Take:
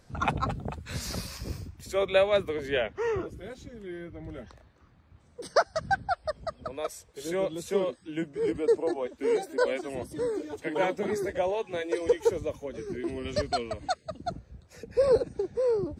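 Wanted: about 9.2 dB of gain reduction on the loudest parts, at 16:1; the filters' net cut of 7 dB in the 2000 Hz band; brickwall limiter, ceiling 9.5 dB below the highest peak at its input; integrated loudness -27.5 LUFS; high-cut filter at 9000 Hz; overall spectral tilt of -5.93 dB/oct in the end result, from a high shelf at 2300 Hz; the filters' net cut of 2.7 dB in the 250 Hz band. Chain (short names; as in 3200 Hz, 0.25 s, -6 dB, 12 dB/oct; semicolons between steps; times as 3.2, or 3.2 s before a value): LPF 9000 Hz; bell 250 Hz -4 dB; bell 2000 Hz -6.5 dB; high shelf 2300 Hz -6.5 dB; compressor 16:1, threshold -28 dBFS; gain +11.5 dB; limiter -17.5 dBFS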